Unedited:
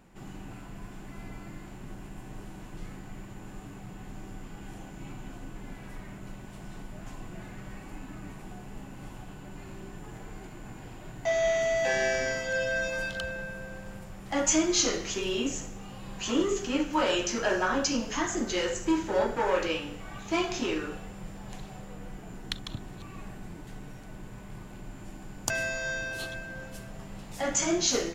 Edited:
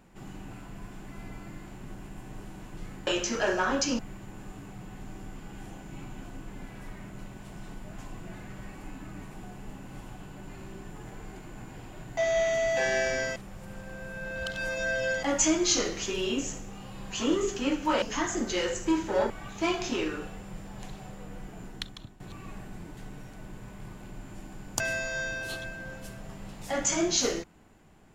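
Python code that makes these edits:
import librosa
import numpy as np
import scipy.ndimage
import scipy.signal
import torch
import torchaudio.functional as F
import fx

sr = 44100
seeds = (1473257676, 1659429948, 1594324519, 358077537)

y = fx.edit(x, sr, fx.reverse_span(start_s=12.44, length_s=1.87),
    fx.move(start_s=17.1, length_s=0.92, to_s=3.07),
    fx.cut(start_s=19.3, length_s=0.7),
    fx.fade_out_to(start_s=22.34, length_s=0.56, floor_db=-16.0), tone=tone)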